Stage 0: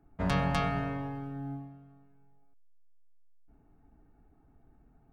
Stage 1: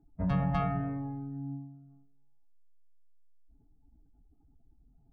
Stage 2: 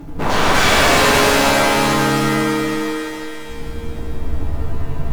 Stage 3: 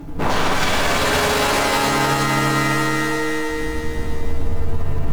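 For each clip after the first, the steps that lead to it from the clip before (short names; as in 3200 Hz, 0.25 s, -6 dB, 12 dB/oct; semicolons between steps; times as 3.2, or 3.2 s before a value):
spectral contrast raised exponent 1.8
sine folder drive 20 dB, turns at -17.5 dBFS; power-law curve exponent 0.5; shimmer reverb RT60 3.3 s, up +7 st, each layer -2 dB, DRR -8.5 dB; gain -4.5 dB
on a send: split-band echo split 330 Hz, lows 0.217 s, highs 0.315 s, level -3.5 dB; on the sum: limiter -9 dBFS, peak gain reduction 9.5 dB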